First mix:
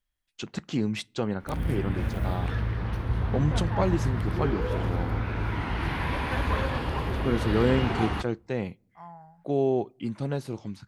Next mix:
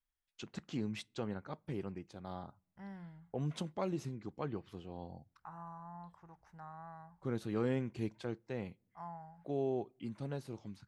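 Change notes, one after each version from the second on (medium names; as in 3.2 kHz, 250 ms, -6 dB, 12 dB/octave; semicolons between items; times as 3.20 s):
first voice -11.0 dB; second voice: send -7.0 dB; background: muted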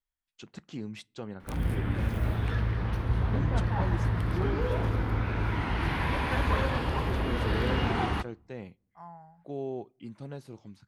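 background: unmuted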